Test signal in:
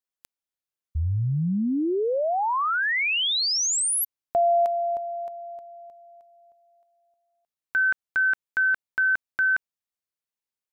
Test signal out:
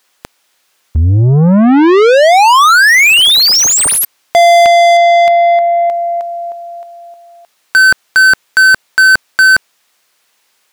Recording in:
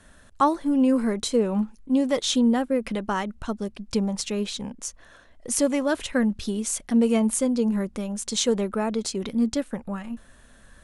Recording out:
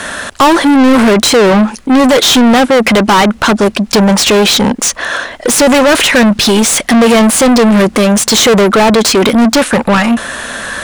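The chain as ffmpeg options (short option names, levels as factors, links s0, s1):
-filter_complex "[0:a]acontrast=36,asplit=2[s0][s1];[s1]highpass=f=720:p=1,volume=63.1,asoftclip=type=tanh:threshold=0.708[s2];[s0][s2]amix=inputs=2:normalize=0,lowpass=f=5200:p=1,volume=0.501,volume=1.41"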